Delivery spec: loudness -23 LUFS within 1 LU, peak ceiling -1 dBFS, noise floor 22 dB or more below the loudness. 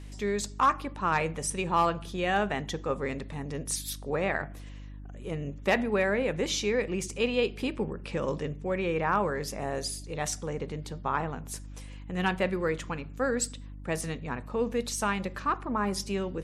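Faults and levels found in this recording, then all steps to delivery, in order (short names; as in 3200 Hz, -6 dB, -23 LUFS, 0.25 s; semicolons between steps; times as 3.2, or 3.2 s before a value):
hum 50 Hz; harmonics up to 300 Hz; hum level -41 dBFS; loudness -30.5 LUFS; peak -15.0 dBFS; loudness target -23.0 LUFS
-> de-hum 50 Hz, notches 6; gain +7.5 dB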